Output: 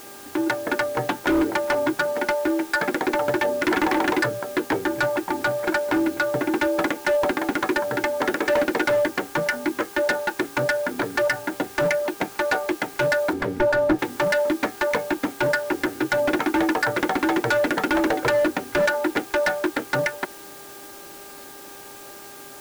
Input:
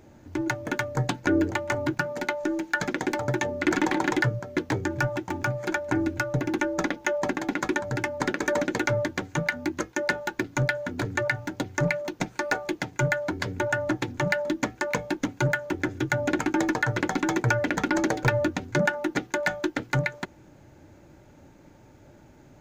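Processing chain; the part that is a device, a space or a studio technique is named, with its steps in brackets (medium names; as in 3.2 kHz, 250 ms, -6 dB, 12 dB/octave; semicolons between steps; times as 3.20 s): aircraft radio (band-pass 330–2400 Hz; hard clipper -25 dBFS, distortion -10 dB; mains buzz 400 Hz, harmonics 4, -55 dBFS -2 dB/octave; white noise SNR 20 dB); 13.33–13.99 s: tilt EQ -2.5 dB/octave; trim +8.5 dB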